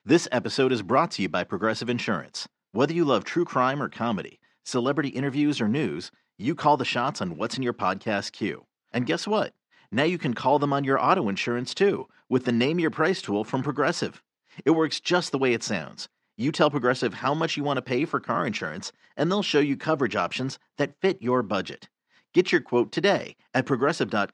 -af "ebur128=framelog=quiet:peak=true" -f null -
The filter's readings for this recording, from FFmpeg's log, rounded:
Integrated loudness:
  I:         -25.5 LUFS
  Threshold: -35.8 LUFS
Loudness range:
  LRA:         2.2 LU
  Threshold: -46.0 LUFS
  LRA low:   -26.9 LUFS
  LRA high:  -24.7 LUFS
True peak:
  Peak:       -4.9 dBFS